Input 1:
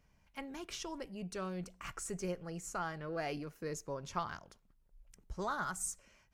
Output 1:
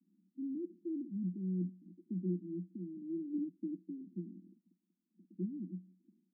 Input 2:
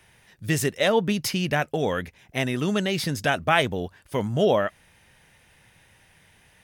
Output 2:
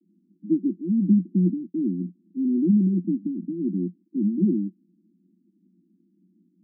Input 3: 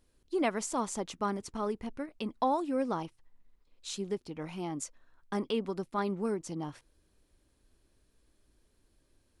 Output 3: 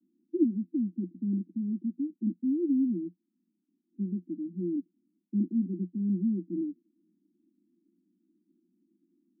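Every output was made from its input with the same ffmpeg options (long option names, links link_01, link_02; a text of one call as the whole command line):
ffmpeg -i in.wav -af "asuperpass=centerf=250:order=20:qfactor=1.4,volume=8dB" out.wav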